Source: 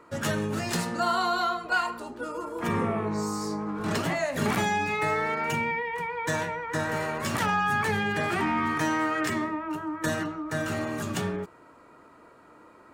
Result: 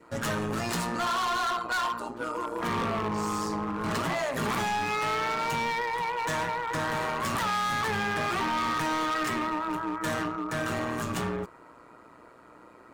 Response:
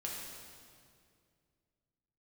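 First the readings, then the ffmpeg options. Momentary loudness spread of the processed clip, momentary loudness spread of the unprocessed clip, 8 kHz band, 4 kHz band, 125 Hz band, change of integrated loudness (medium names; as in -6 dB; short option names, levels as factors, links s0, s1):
4 LU, 7 LU, -1.0 dB, +1.0 dB, -3.0 dB, -1.0 dB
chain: -af "adynamicequalizer=threshold=0.00708:dfrequency=1100:dqfactor=2.3:tfrequency=1100:tqfactor=2.3:attack=5:release=100:ratio=0.375:range=4:mode=boostabove:tftype=bell,tremolo=f=120:d=0.667,volume=29.9,asoftclip=hard,volume=0.0335,volume=1.5"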